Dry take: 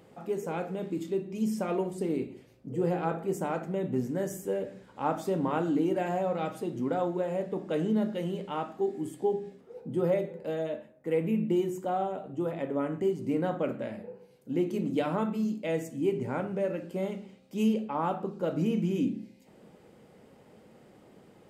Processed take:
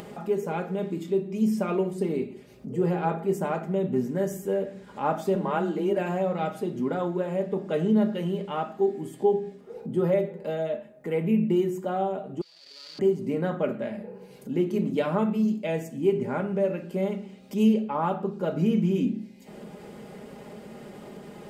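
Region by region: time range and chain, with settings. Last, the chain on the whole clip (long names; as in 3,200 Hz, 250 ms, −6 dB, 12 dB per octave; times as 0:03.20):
0:05.35–0:05.97: parametric band 250 Hz −12.5 dB 0.3 octaves + frequency shifter +21 Hz
0:12.41–0:12.99: gap after every zero crossing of 0.25 ms + resonant band-pass 4,600 Hz, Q 17 + envelope flattener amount 100%
whole clip: dynamic equaliser 8,200 Hz, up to −4 dB, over −59 dBFS, Q 0.77; comb filter 4.9 ms, depth 50%; upward compression, threshold −35 dBFS; level +2.5 dB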